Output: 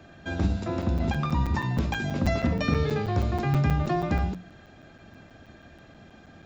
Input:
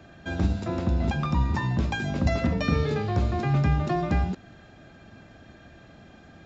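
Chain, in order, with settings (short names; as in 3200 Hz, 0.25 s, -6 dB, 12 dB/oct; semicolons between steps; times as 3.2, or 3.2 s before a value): notches 60/120/180 Hz; crackling interface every 0.16 s, samples 256, zero, from 0.82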